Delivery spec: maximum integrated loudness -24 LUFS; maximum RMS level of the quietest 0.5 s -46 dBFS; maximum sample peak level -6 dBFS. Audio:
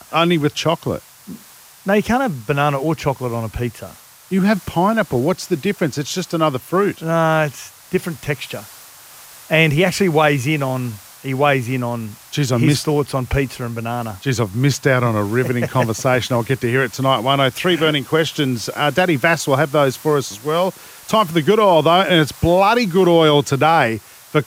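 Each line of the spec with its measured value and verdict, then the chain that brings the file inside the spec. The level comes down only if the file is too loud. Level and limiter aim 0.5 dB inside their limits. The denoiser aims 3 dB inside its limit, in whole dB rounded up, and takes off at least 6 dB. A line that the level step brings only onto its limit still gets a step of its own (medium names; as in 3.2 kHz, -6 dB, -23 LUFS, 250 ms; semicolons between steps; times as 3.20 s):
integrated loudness -17.5 LUFS: fail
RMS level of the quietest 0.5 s -44 dBFS: fail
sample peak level -2.0 dBFS: fail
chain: trim -7 dB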